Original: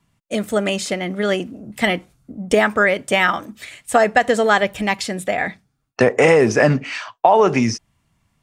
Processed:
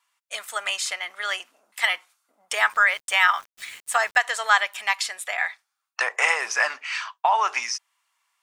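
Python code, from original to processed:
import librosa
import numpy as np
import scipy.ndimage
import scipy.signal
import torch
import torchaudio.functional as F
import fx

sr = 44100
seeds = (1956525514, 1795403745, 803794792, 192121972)

y = scipy.signal.sosfilt(scipy.signal.cheby1(3, 1.0, 1000.0, 'highpass', fs=sr, output='sos'), x)
y = fx.sample_gate(y, sr, floor_db=-43.5, at=(2.72, 4.2), fade=0.02)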